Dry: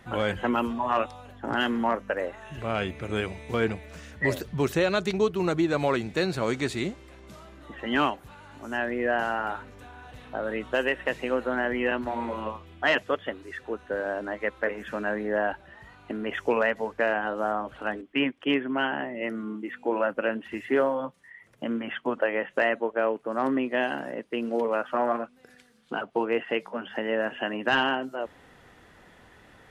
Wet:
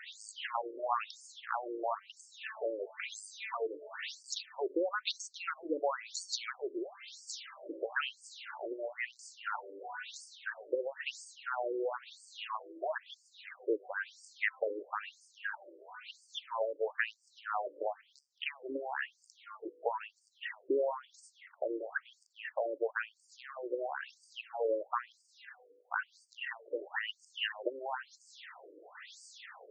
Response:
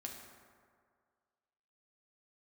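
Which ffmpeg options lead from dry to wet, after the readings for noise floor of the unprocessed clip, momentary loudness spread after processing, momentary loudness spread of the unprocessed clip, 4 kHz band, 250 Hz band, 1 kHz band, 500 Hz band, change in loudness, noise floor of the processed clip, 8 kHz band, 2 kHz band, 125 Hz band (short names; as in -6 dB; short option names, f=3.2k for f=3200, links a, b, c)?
-55 dBFS, 16 LU, 11 LU, -7.0 dB, -17.5 dB, -9.5 dB, -10.0 dB, -10.5 dB, -70 dBFS, n/a, -10.0 dB, under -40 dB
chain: -af "crystalizer=i=4.5:c=0,acompressor=threshold=-32dB:ratio=6,afftfilt=real='re*between(b*sr/1024,400*pow(6500/400,0.5+0.5*sin(2*PI*1*pts/sr))/1.41,400*pow(6500/400,0.5+0.5*sin(2*PI*1*pts/sr))*1.41)':imag='im*between(b*sr/1024,400*pow(6500/400,0.5+0.5*sin(2*PI*1*pts/sr))/1.41,400*pow(6500/400,0.5+0.5*sin(2*PI*1*pts/sr))*1.41)':win_size=1024:overlap=0.75,volume=5.5dB"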